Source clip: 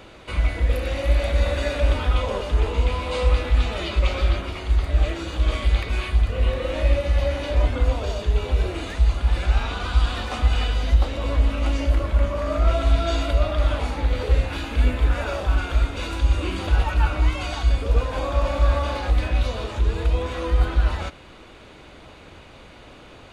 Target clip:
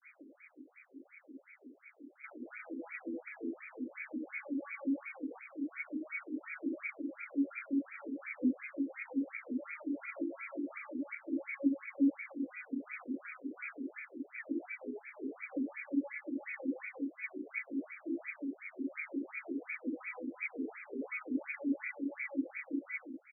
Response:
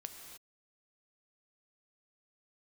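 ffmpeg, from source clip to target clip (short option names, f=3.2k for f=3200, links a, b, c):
-filter_complex "[0:a]areverse,asplit=3[a][b][c];[a]bandpass=f=270:t=q:w=8,volume=0dB[d];[b]bandpass=f=2.29k:t=q:w=8,volume=-6dB[e];[c]bandpass=f=3.01k:t=q:w=8,volume=-9dB[f];[d][e][f]amix=inputs=3:normalize=0,acrossover=split=300|930|3000[g][h][i][j];[g]aecho=1:1:590|1121|1599|2029|2416:0.631|0.398|0.251|0.158|0.1[k];[h]aeval=exprs='max(val(0),0)':c=same[l];[k][l][i][j]amix=inputs=4:normalize=0,afftfilt=real='re*between(b*sr/1024,320*pow(1800/320,0.5+0.5*sin(2*PI*2.8*pts/sr))/1.41,320*pow(1800/320,0.5+0.5*sin(2*PI*2.8*pts/sr))*1.41)':imag='im*between(b*sr/1024,320*pow(1800/320,0.5+0.5*sin(2*PI*2.8*pts/sr))/1.41,320*pow(1800/320,0.5+0.5*sin(2*PI*2.8*pts/sr))*1.41)':win_size=1024:overlap=0.75,volume=10.5dB"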